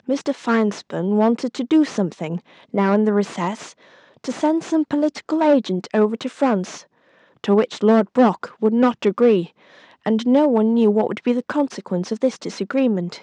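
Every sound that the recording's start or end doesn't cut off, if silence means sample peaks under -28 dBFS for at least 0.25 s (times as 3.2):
2.74–3.66
4.24–6.78
7.44–9.45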